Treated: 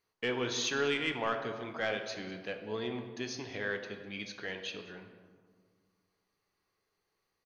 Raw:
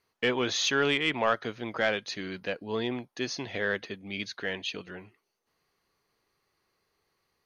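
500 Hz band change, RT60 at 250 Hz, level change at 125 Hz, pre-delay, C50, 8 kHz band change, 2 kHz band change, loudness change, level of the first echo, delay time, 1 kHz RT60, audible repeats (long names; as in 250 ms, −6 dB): −5.0 dB, 2.1 s, −5.0 dB, 3 ms, 7.5 dB, −4.5 dB, −6.0 dB, −5.5 dB, −19.0 dB, 201 ms, 1.7 s, 1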